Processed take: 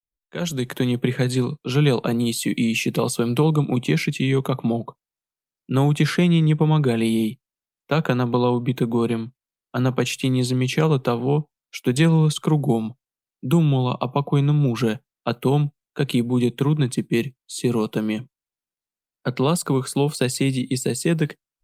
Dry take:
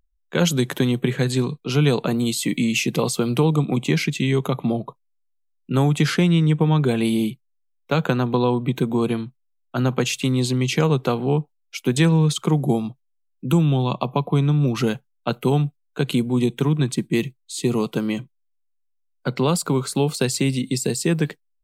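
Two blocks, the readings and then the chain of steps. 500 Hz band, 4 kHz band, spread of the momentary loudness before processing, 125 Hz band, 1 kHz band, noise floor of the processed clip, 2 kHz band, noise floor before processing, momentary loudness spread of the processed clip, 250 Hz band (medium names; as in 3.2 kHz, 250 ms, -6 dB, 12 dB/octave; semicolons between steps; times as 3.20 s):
0.0 dB, -1.5 dB, 9 LU, 0.0 dB, 0.0 dB, under -85 dBFS, -1.0 dB, -69 dBFS, 9 LU, 0.0 dB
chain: fade-in on the opening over 1.01 s; Opus 48 kbps 48 kHz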